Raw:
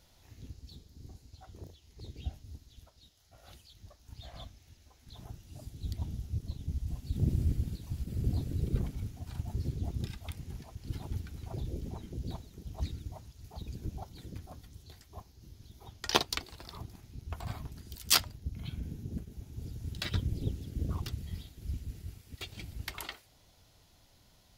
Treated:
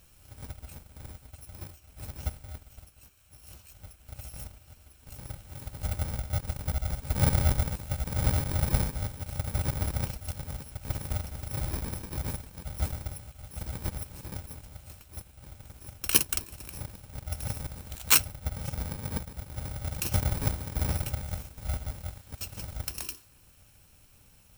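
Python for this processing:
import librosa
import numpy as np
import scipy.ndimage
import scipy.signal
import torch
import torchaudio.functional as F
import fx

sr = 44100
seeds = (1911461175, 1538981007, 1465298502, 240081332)

y = fx.bit_reversed(x, sr, seeds[0], block=64)
y = fx.quant_float(y, sr, bits=2)
y = F.gain(torch.from_numpy(y), 5.0).numpy()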